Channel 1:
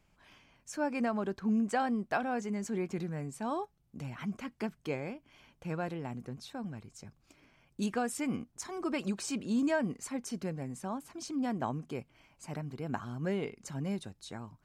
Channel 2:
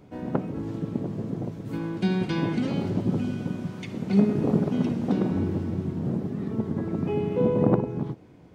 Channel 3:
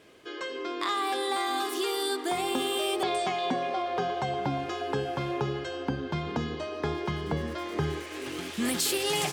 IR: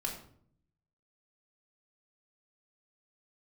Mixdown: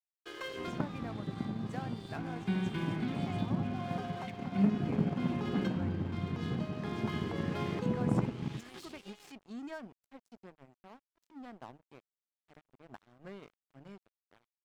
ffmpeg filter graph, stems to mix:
-filter_complex "[0:a]highshelf=f=9.6k:g=10,bandreject=f=50:t=h:w=6,bandreject=f=100:t=h:w=6,bandreject=f=150:t=h:w=6,volume=-11dB,asplit=2[a][b];[1:a]lowpass=2.8k,equalizer=f=470:t=o:w=1.4:g=-10,adelay=450,volume=-4.5dB[c];[2:a]highpass=f=300:p=1,alimiter=level_in=3dB:limit=-24dB:level=0:latency=1:release=17,volume=-3dB,volume=-2dB[d];[b]apad=whole_len=411138[e];[d][e]sidechaincompress=threshold=-52dB:ratio=16:attack=28:release=635[f];[a][c][f]amix=inputs=3:normalize=0,lowpass=4.8k,aeval=exprs='sgn(val(0))*max(abs(val(0))-0.00355,0)':c=same"

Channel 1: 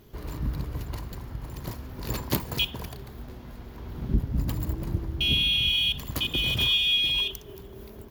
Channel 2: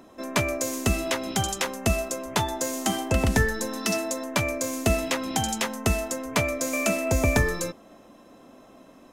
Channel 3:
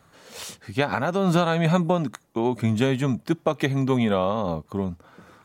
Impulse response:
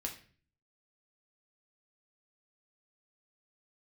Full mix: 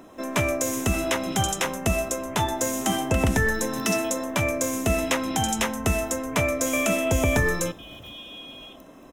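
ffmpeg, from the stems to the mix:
-filter_complex "[0:a]adelay=1450,volume=-18dB[a];[1:a]alimiter=limit=-14.5dB:level=0:latency=1:release=63,volume=1.5dB,asplit=2[b][c];[c]volume=-10.5dB[d];[2:a]acompressor=threshold=-28dB:ratio=6,acrusher=bits=8:mix=0:aa=0.000001,volume=-12.5dB[e];[3:a]atrim=start_sample=2205[f];[d][f]afir=irnorm=-1:irlink=0[g];[a][b][e][g]amix=inputs=4:normalize=0,equalizer=f=4.5k:t=o:w=0.22:g=-12"

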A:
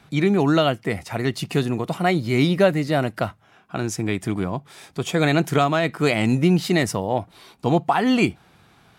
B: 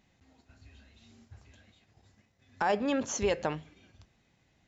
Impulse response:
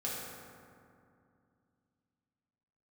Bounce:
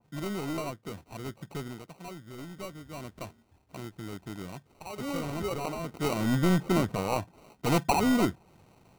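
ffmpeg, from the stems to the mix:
-filter_complex "[0:a]lowpass=f=2.5k:w=0.5412,lowpass=f=2.5k:w=1.3066,aeval=exprs='clip(val(0),-1,0.133)':c=same,volume=4dB,afade=t=out:st=1.63:d=0.25:silence=0.398107,afade=t=in:st=2.89:d=0.28:silence=0.421697,afade=t=in:st=5.8:d=0.56:silence=0.298538,asplit=2[a][b];[1:a]deesser=0.85,equalizer=f=1.9k:w=1.1:g=-5.5,adelay=2200,volume=-4.5dB,asplit=2[c][d];[d]volume=-21.5dB[e];[b]apad=whole_len=303083[f];[c][f]sidechaingate=range=-8dB:threshold=-57dB:ratio=16:detection=peak[g];[e]aecho=0:1:205:1[h];[a][g][h]amix=inputs=3:normalize=0,acrusher=samples=26:mix=1:aa=0.000001,adynamicequalizer=threshold=0.00631:dfrequency=1900:dqfactor=0.7:tfrequency=1900:tqfactor=0.7:attack=5:release=100:ratio=0.375:range=2.5:mode=cutabove:tftype=highshelf"

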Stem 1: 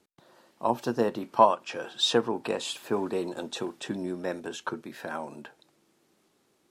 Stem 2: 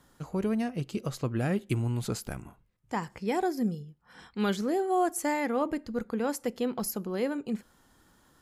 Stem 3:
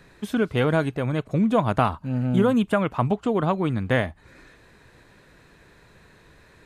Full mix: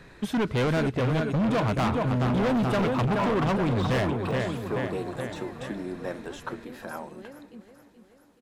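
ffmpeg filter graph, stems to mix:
-filter_complex "[0:a]aeval=exprs='0.596*sin(PI/2*2*val(0)/0.596)':c=same,equalizer=f=12k:w=1:g=7,deesser=0.6,adelay=1800,volume=-12dB,asplit=2[a][b];[b]volume=-22dB[c];[1:a]acompressor=threshold=-36dB:ratio=2,adelay=50,volume=-10dB,asplit=2[d][e];[e]volume=-9.5dB[f];[2:a]volume=3dB,asplit=2[g][h];[h]volume=-8.5dB[i];[c][f][i]amix=inputs=3:normalize=0,aecho=0:1:428|856|1284|1712|2140|2568|2996|3424|3852:1|0.57|0.325|0.185|0.106|0.0602|0.0343|0.0195|0.0111[j];[a][d][g][j]amix=inputs=4:normalize=0,volume=22dB,asoftclip=hard,volume=-22dB,highshelf=f=7.1k:g=-7"

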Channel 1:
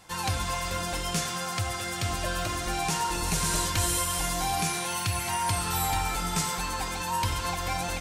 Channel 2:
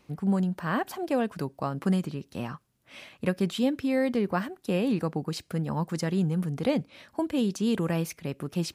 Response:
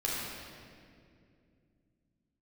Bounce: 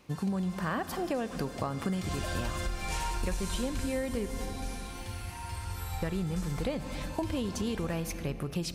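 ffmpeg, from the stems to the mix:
-filter_complex "[0:a]flanger=delay=2.1:depth=7:regen=62:speed=0.35:shape=sinusoidal,volume=-4.5dB,afade=t=in:st=1.76:d=0.41:silence=0.281838,afade=t=out:st=3.43:d=0.46:silence=0.398107,asplit=2[a][b];[b]volume=-3.5dB[c];[1:a]volume=2dB,asplit=3[d][e][f];[d]atrim=end=4.31,asetpts=PTS-STARTPTS,afade=t=out:st=4.306:d=0.004:c=hsin[g];[e]atrim=start=4.31:end=6.02,asetpts=PTS-STARTPTS,volume=0[h];[f]atrim=start=6.02,asetpts=PTS-STARTPTS,afade=t=in:d=0.004:c=hsin[i];[g][h][i]concat=n=3:v=0:a=1,asplit=3[j][k][l];[k]volume=-19.5dB[m];[l]apad=whole_len=353013[n];[a][n]sidechaingate=range=-33dB:threshold=-48dB:ratio=16:detection=peak[o];[2:a]atrim=start_sample=2205[p];[c][m]amix=inputs=2:normalize=0[q];[q][p]afir=irnorm=-1:irlink=0[r];[o][j][r]amix=inputs=3:normalize=0,asubboost=boost=6:cutoff=73,acompressor=threshold=-29dB:ratio=6"

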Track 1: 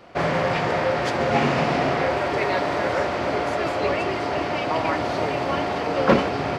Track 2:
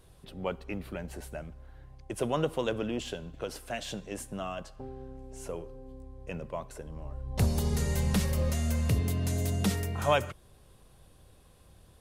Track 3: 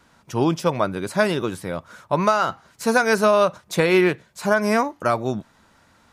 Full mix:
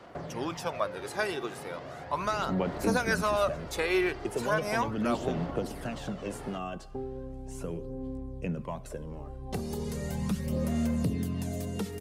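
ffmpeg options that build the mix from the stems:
-filter_complex "[0:a]equalizer=f=2.4k:t=o:w=0.28:g=-6,alimiter=limit=-15.5dB:level=0:latency=1:release=383,acrossover=split=220|650[a][b][c];[a]acompressor=threshold=-41dB:ratio=4[d];[b]acompressor=threshold=-41dB:ratio=4[e];[c]acompressor=threshold=-42dB:ratio=4[f];[d][e][f]amix=inputs=3:normalize=0,volume=-7.5dB[g];[1:a]equalizer=f=200:t=o:w=1.7:g=9.5,acrossover=split=180|1400[h][i][j];[h]acompressor=threshold=-43dB:ratio=4[k];[i]acompressor=threshold=-34dB:ratio=4[l];[j]acompressor=threshold=-48dB:ratio=4[m];[k][l][m]amix=inputs=3:normalize=0,adelay=2150,volume=0.5dB[n];[2:a]highpass=f=620:p=1,volume=-8.5dB[o];[g][n][o]amix=inputs=3:normalize=0,aphaser=in_gain=1:out_gain=1:delay=2.6:decay=0.44:speed=0.37:type=sinusoidal"

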